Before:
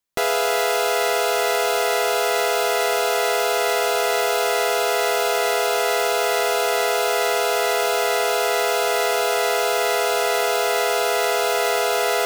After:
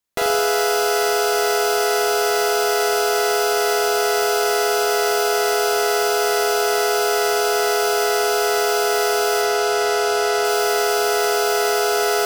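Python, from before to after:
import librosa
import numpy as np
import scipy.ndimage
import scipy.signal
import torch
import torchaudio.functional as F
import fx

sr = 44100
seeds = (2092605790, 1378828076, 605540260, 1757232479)

p1 = fx.high_shelf(x, sr, hz=11000.0, db=-10.5, at=(9.41, 10.45))
y = p1 + fx.room_flutter(p1, sr, wall_m=7.4, rt60_s=0.76, dry=0)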